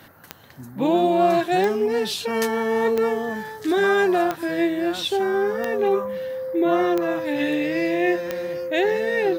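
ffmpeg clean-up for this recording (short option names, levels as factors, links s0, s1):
-af "adeclick=t=4,bandreject=f=520:w=30"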